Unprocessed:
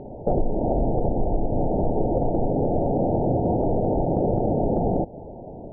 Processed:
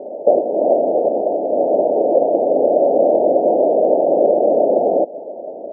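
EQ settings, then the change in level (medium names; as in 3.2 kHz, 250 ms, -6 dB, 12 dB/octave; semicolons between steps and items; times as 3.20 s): high-pass 270 Hz 24 dB/octave; resonant low-pass 600 Hz, resonance Q 4.5; +2.0 dB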